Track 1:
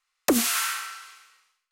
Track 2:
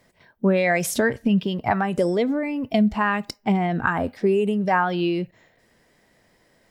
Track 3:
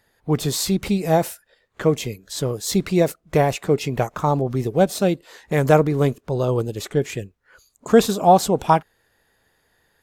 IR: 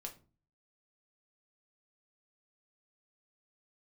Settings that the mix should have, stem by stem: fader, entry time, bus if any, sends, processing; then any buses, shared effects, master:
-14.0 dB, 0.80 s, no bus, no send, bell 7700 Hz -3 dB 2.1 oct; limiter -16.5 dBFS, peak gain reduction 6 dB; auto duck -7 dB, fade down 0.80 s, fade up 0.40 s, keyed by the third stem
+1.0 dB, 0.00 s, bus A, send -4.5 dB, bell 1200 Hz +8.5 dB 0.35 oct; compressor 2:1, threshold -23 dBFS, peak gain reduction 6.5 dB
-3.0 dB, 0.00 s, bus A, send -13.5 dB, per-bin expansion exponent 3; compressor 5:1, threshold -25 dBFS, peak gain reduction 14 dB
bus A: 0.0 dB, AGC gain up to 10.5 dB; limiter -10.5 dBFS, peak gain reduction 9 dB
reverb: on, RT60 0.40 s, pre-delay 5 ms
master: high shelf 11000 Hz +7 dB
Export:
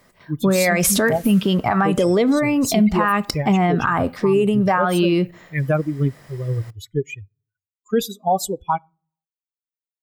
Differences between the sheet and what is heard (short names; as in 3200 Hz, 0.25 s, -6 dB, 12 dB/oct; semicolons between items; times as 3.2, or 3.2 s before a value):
stem 1: missing limiter -16.5 dBFS, peak gain reduction 6 dB; stem 3: missing compressor 5:1, threshold -25 dBFS, peak gain reduction 14 dB